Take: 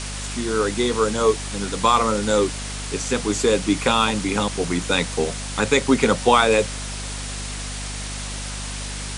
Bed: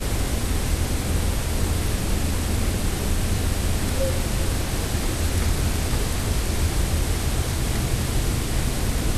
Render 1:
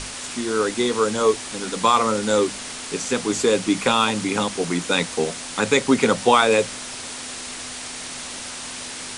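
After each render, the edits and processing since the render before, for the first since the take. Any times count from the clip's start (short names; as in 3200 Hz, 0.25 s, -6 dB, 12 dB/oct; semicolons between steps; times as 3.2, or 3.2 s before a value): notches 50/100/150/200 Hz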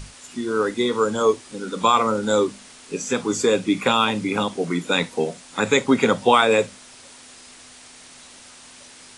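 noise print and reduce 12 dB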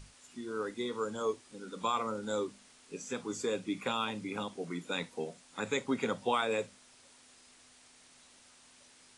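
gain -15 dB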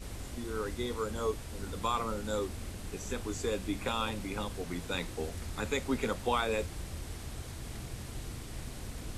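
add bed -18.5 dB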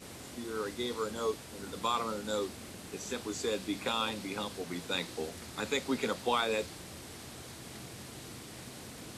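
HPF 160 Hz 12 dB/oct; dynamic EQ 4300 Hz, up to +6 dB, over -55 dBFS, Q 1.7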